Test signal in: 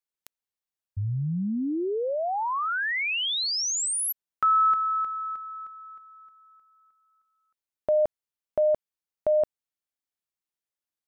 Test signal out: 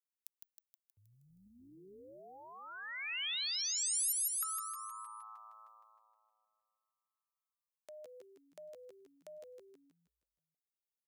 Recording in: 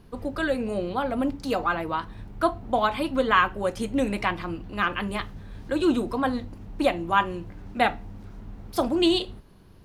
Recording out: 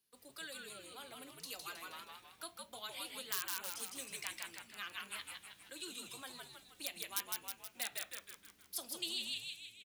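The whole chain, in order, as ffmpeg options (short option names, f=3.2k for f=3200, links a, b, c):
-filter_complex "[0:a]asplit=2[a][b];[b]aeval=exprs='(mod(2.99*val(0)+1,2)-1)/2.99':c=same,volume=-5dB[c];[a][c]amix=inputs=2:normalize=0,agate=range=-9dB:threshold=-37dB:ratio=3:release=159:detection=rms,equalizer=f=970:t=o:w=1.6:g=-7,asplit=2[d][e];[e]asplit=7[f][g][h][i][j][k][l];[f]adelay=158,afreqshift=-110,volume=-3dB[m];[g]adelay=316,afreqshift=-220,volume=-8.5dB[n];[h]adelay=474,afreqshift=-330,volume=-14dB[o];[i]adelay=632,afreqshift=-440,volume=-19.5dB[p];[j]adelay=790,afreqshift=-550,volume=-25.1dB[q];[k]adelay=948,afreqshift=-660,volume=-30.6dB[r];[l]adelay=1106,afreqshift=-770,volume=-36.1dB[s];[m][n][o][p][q][r][s]amix=inputs=7:normalize=0[t];[d][t]amix=inputs=2:normalize=0,acrossover=split=300|2800[u][v][w];[u]acompressor=threshold=-23dB:ratio=4[x];[v]acompressor=threshold=-23dB:ratio=4[y];[w]acompressor=threshold=-28dB:ratio=4[z];[x][y][z]amix=inputs=3:normalize=0,aderivative,volume=-6dB"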